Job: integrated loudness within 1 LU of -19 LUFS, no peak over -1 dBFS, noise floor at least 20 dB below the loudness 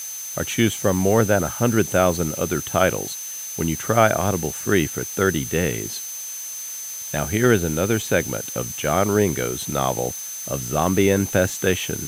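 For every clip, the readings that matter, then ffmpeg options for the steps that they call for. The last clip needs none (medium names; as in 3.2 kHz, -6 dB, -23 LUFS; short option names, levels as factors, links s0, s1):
steady tone 6.2 kHz; tone level -31 dBFS; noise floor -32 dBFS; noise floor target -42 dBFS; loudness -21.5 LUFS; peak level -2.0 dBFS; loudness target -19.0 LUFS
-> -af "bandreject=f=6200:w=30"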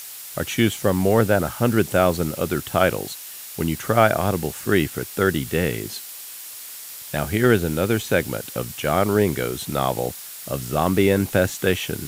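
steady tone not found; noise floor -37 dBFS; noise floor target -42 dBFS
-> -af "afftdn=nr=6:nf=-37"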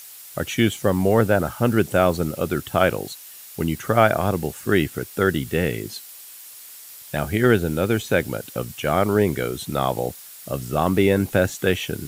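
noise floor -42 dBFS; loudness -22.0 LUFS; peak level -2.0 dBFS; loudness target -19.0 LUFS
-> -af "volume=1.41,alimiter=limit=0.891:level=0:latency=1"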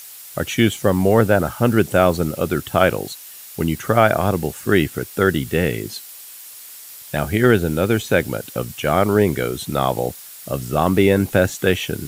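loudness -19.0 LUFS; peak level -1.0 dBFS; noise floor -39 dBFS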